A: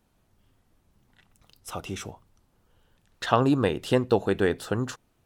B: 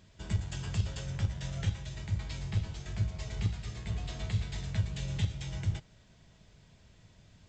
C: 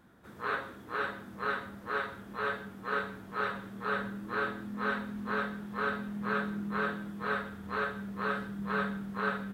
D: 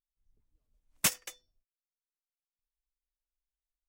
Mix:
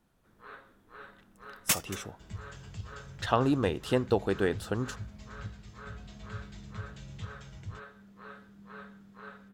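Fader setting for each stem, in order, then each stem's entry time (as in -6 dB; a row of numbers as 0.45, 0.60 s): -4.5, -10.5, -15.5, +0.5 dB; 0.00, 2.00, 0.00, 0.65 s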